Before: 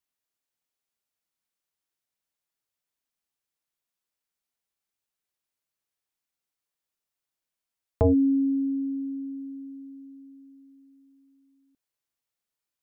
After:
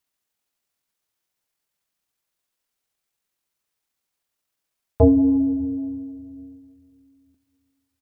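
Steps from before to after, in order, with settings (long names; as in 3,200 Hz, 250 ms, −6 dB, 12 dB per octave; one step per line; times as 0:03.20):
tempo change 1.6×
on a send: convolution reverb RT60 2.2 s, pre-delay 26 ms, DRR 11 dB
on the sum: level +7.5 dB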